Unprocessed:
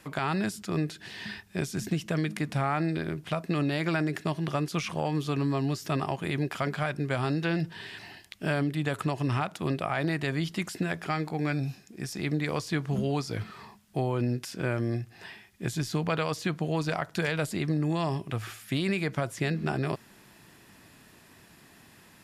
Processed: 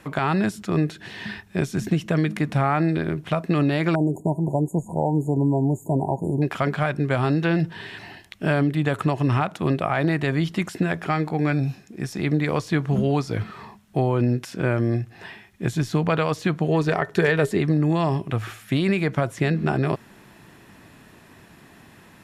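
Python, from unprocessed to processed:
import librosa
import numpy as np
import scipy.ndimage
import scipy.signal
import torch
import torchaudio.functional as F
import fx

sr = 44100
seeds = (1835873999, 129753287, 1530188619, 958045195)

y = fx.brickwall_bandstop(x, sr, low_hz=1000.0, high_hz=6600.0, at=(3.95, 6.42))
y = fx.small_body(y, sr, hz=(410.0, 1800.0), ring_ms=85, db=fx.line((16.68, 13.0), (17.59, 16.0)), at=(16.68, 17.59), fade=0.02)
y = fx.high_shelf(y, sr, hz=3100.0, db=-8.5)
y = fx.notch(y, sr, hz=4800.0, q=15.0)
y = y * 10.0 ** (7.5 / 20.0)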